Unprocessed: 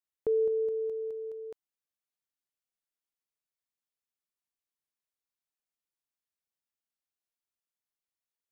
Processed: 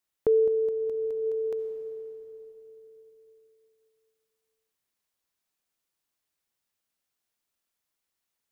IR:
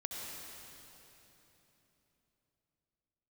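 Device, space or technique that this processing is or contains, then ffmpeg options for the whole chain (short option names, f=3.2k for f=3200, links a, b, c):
ducked reverb: -filter_complex "[0:a]asplit=3[a][b][c];[1:a]atrim=start_sample=2205[d];[b][d]afir=irnorm=-1:irlink=0[e];[c]apad=whole_len=375498[f];[e][f]sidechaincompress=threshold=-36dB:ratio=10:attack=16:release=980,volume=-1dB[g];[a][g]amix=inputs=2:normalize=0,volume=4.5dB"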